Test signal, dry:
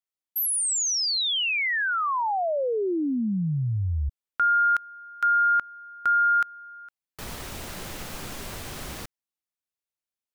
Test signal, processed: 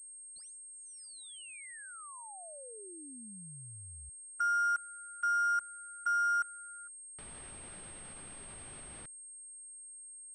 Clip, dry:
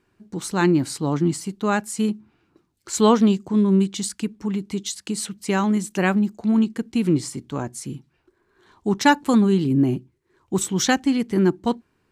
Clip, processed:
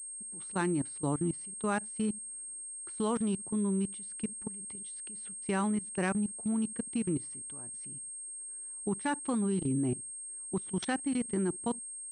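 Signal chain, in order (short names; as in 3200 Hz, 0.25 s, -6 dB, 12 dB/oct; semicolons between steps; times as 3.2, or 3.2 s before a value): level quantiser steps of 22 dB; pulse-width modulation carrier 8500 Hz; gain -7.5 dB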